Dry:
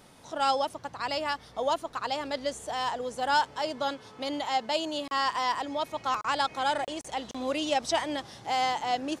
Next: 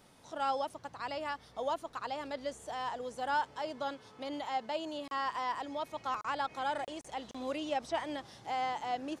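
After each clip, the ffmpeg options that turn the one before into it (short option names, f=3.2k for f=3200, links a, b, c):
-filter_complex "[0:a]acrossover=split=2600[a][b];[b]acompressor=threshold=-42dB:ratio=4:attack=1:release=60[c];[a][c]amix=inputs=2:normalize=0,volume=-6.5dB"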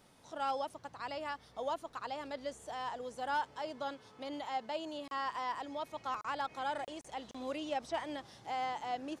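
-af "asoftclip=type=hard:threshold=-24.5dB,volume=-2.5dB"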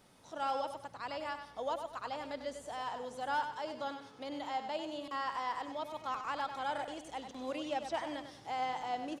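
-af "aecho=1:1:97|194|291|388:0.376|0.124|0.0409|0.0135"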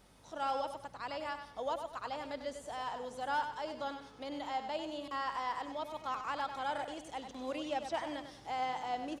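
-af "aeval=exprs='val(0)+0.000447*(sin(2*PI*50*n/s)+sin(2*PI*2*50*n/s)/2+sin(2*PI*3*50*n/s)/3+sin(2*PI*4*50*n/s)/4+sin(2*PI*5*50*n/s)/5)':c=same"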